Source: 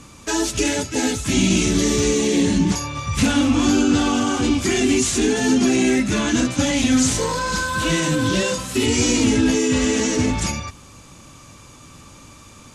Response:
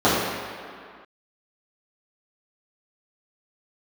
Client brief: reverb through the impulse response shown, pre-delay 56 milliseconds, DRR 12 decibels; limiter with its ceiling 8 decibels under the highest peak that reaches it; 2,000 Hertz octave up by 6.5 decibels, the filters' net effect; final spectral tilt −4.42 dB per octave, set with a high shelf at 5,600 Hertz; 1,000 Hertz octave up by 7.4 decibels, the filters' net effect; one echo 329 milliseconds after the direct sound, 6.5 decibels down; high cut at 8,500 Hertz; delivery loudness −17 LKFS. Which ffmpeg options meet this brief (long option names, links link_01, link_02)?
-filter_complex "[0:a]lowpass=8500,equalizer=frequency=1000:width_type=o:gain=7,equalizer=frequency=2000:width_type=o:gain=7.5,highshelf=frequency=5600:gain=-9,alimiter=limit=-13.5dB:level=0:latency=1,aecho=1:1:329:0.473,asplit=2[link_01][link_02];[1:a]atrim=start_sample=2205,adelay=56[link_03];[link_02][link_03]afir=irnorm=-1:irlink=0,volume=-35.5dB[link_04];[link_01][link_04]amix=inputs=2:normalize=0,volume=3dB"